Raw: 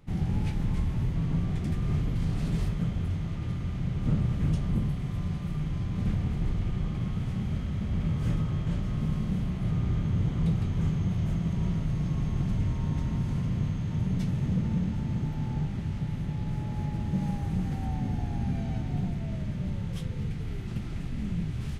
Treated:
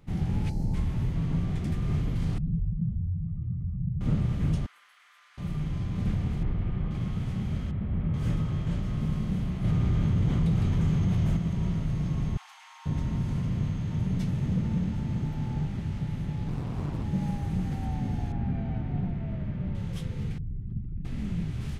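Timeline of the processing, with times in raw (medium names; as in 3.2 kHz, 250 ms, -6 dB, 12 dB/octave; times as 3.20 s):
0.49–0.74 s: time-frequency box 940–4000 Hz -16 dB
2.38–4.01 s: spectral contrast enhancement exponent 2
4.66–5.38 s: ladder high-pass 1.2 kHz, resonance 45%
6.43–6.91 s: low-pass 2.5 kHz
7.71–8.14 s: distance through air 480 m
9.64–11.37 s: level flattener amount 70%
12.37–12.86 s: Chebyshev high-pass 780 Hz, order 6
16.48–17.04 s: loudspeaker Doppler distortion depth 0.93 ms
18.32–19.75 s: low-pass 2.3 kHz
20.38–21.05 s: resonances exaggerated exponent 2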